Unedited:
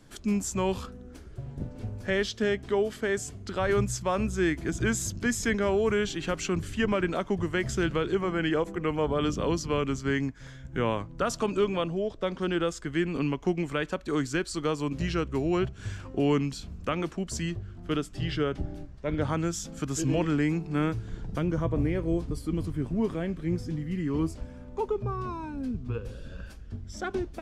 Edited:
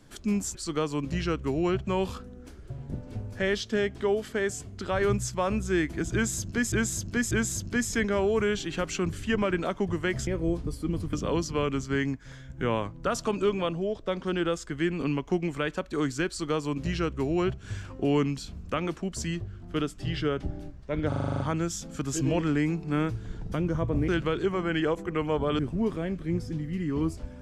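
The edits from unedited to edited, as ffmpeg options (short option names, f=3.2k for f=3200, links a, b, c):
-filter_complex "[0:a]asplit=17[a][b][c][d][e][f][g][h][i][j][k][l][m][n][o][p][q];[a]atrim=end=0.552[r];[b]atrim=start=14.428:end=15.752[s];[c]atrim=start=0.548:end=5.402[t];[d]atrim=start=4.808:end=5.402[u];[e]atrim=start=4.808:end=7.772[v];[f]atrim=start=21.908:end=22.772[w];[g]atrim=start=9.278:end=19.272[x];[h]atrim=start=19.228:end=19.272[y];[i]atrim=start=19.228:end=19.272[z];[j]atrim=start=19.228:end=19.272[aa];[k]atrim=start=19.228:end=19.272[ab];[l]atrim=start=19.228:end=19.272[ac];[m]atrim=start=19.228:end=19.272[ad];[n]atrim=start=19.228:end=19.272[ae];[o]atrim=start=19.228:end=21.912[af];[p]atrim=start=7.768:end=9.282[ag];[q]atrim=start=22.768[ah];[r][s]acrossfade=d=0.004:c1=hsin:c2=hsin[ai];[ai][t]acrossfade=d=0.004:c1=hsin:c2=hsin[aj];[aj][u]acrossfade=d=0.004:c1=hsin:c2=hsin[ak];[ak][v]acrossfade=d=0.004:c1=hsin:c2=hsin[al];[al][w]acrossfade=d=0.004:c1=hsin:c2=hsin[am];[am][x]acrossfade=d=0.004:c1=hsin:c2=hsin[an];[an][y]acrossfade=d=0.004:c1=hsin:c2=hsin[ao];[ao][z]acrossfade=d=0.004:c1=hsin:c2=hsin[ap];[ap][aa]acrossfade=d=0.004:c1=hsin:c2=hsin[aq];[aq][ab]acrossfade=d=0.004:c1=hsin:c2=hsin[ar];[ar][ac]acrossfade=d=0.004:c1=hsin:c2=hsin[as];[as][ad]acrossfade=d=0.004:c1=hsin:c2=hsin[at];[at][ae]acrossfade=d=0.004:c1=hsin:c2=hsin[au];[au][af]acrossfade=d=0.004:c1=hsin:c2=hsin[av];[av][ag]acrossfade=d=0.004:c1=hsin:c2=hsin[aw];[aw][ah]acrossfade=d=0.004:c1=hsin:c2=hsin"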